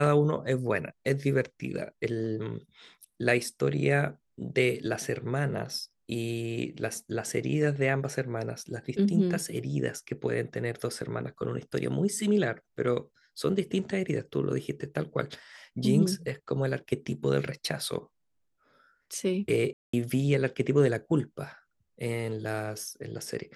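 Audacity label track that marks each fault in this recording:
19.730000	19.930000	dropout 204 ms

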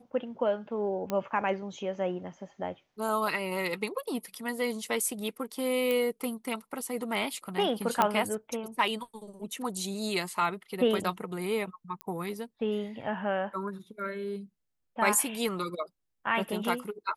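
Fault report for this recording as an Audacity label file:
1.100000	1.100000	pop -18 dBFS
5.910000	5.910000	pop -17 dBFS
8.020000	8.020000	pop -10 dBFS
12.010000	12.010000	pop -21 dBFS

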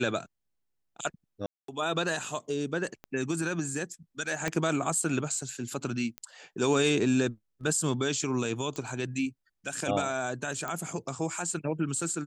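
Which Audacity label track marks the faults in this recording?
1.460000	1.680000	dropout 223 ms
3.040000	3.040000	pop -28 dBFS
4.480000	4.480000	pop -15 dBFS
6.180000	6.180000	pop -21 dBFS
8.760000	8.760000	pop -21 dBFS
10.680000	10.680000	pop -19 dBFS

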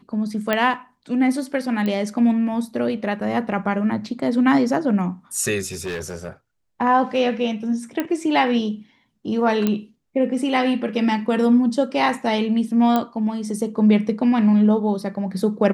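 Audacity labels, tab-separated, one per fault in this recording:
0.530000	0.530000	pop -7 dBFS
1.860000	1.860000	pop -14 dBFS
5.660000	6.280000	clipped -24 dBFS
8.000000	8.000000	pop -10 dBFS
9.670000	9.670000	pop -8 dBFS
12.960000	12.960000	pop -8 dBFS

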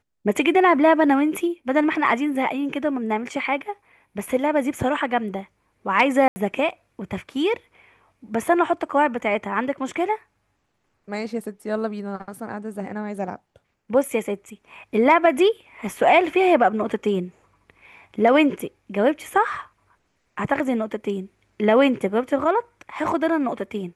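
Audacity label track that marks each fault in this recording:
6.280000	6.360000	dropout 80 ms

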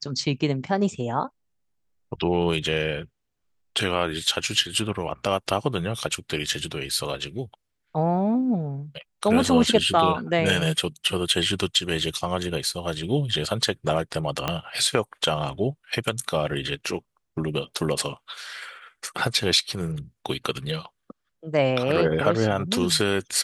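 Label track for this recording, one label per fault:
14.480000	14.480000	pop -9 dBFS

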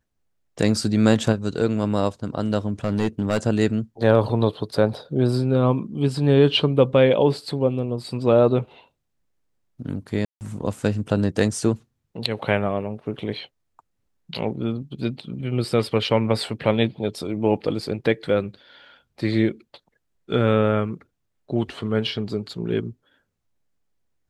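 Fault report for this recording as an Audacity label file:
2.840000	3.380000	clipped -15.5 dBFS
10.250000	10.410000	dropout 159 ms

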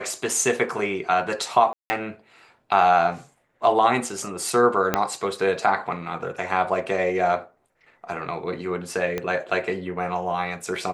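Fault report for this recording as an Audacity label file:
1.730000	1.900000	dropout 170 ms
4.940000	4.940000	pop -5 dBFS
9.180000	9.180000	pop -13 dBFS

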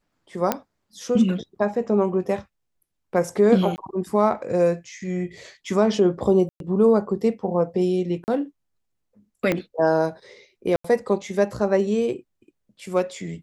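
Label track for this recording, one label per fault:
0.520000	0.520000	pop -6 dBFS
3.760000	3.780000	dropout 19 ms
6.490000	6.600000	dropout 112 ms
8.240000	8.280000	dropout 39 ms
9.520000	9.520000	pop -9 dBFS
10.760000	10.840000	dropout 84 ms

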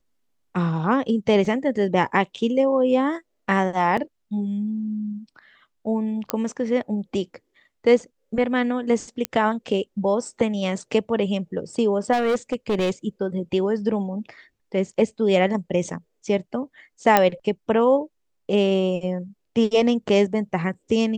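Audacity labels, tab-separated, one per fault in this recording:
1.450000	1.450000	dropout 2.1 ms
3.970000	3.970000	dropout 4.8 ms
6.300000	6.300000	pop -6 dBFS
9.250000	9.250000	pop -7 dBFS
12.120000	12.910000	clipped -17.5 dBFS
17.170000	17.170000	pop -2 dBFS

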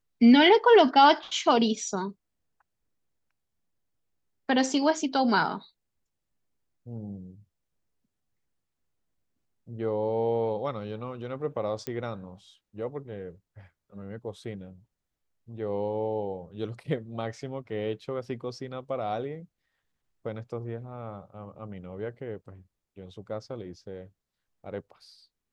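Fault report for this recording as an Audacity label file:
11.870000	11.870000	pop -19 dBFS

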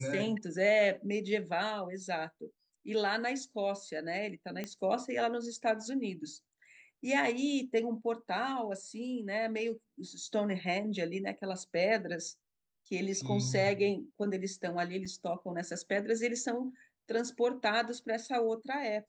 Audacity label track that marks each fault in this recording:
4.640000	4.640000	pop -23 dBFS
15.050000	15.050000	dropout 4.8 ms

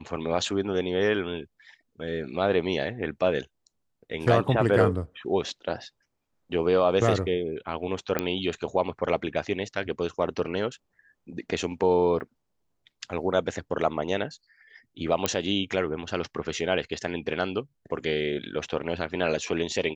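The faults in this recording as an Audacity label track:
8.190000	8.190000	pop -10 dBFS
12.200000	12.210000	dropout 5.6 ms
15.260000	15.260000	pop -8 dBFS

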